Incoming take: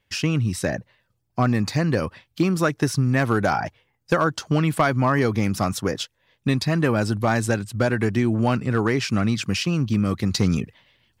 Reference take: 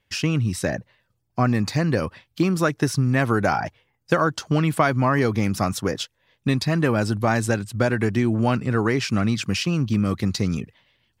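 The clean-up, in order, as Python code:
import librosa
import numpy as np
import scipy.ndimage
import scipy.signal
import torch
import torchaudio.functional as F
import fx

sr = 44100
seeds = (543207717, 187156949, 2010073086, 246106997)

y = fx.fix_declip(x, sr, threshold_db=-10.0)
y = fx.fix_level(y, sr, at_s=10.31, step_db=-3.5)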